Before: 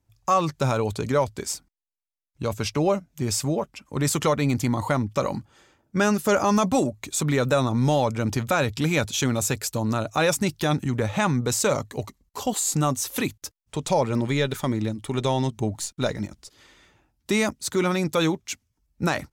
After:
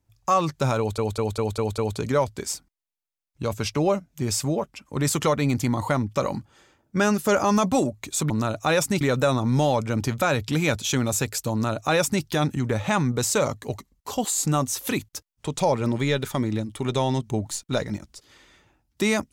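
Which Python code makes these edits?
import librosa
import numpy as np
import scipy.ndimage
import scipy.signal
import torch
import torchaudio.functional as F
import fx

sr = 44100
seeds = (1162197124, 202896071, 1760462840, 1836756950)

y = fx.edit(x, sr, fx.stutter(start_s=0.78, slice_s=0.2, count=6),
    fx.duplicate(start_s=9.81, length_s=0.71, to_s=7.3), tone=tone)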